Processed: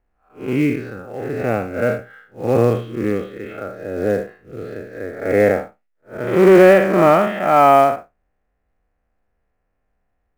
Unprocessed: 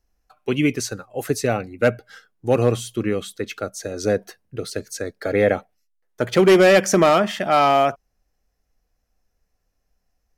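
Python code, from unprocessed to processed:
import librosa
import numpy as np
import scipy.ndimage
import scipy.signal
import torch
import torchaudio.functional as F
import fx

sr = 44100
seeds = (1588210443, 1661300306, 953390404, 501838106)

p1 = fx.spec_blur(x, sr, span_ms=150.0)
p2 = scipy.signal.sosfilt(scipy.signal.butter(4, 2300.0, 'lowpass', fs=sr, output='sos'), p1)
p3 = fx.low_shelf(p2, sr, hz=120.0, db=-6.0)
p4 = fx.quant_float(p3, sr, bits=2)
p5 = p3 + (p4 * librosa.db_to_amplitude(-6.0))
y = p5 * librosa.db_to_amplitude(3.0)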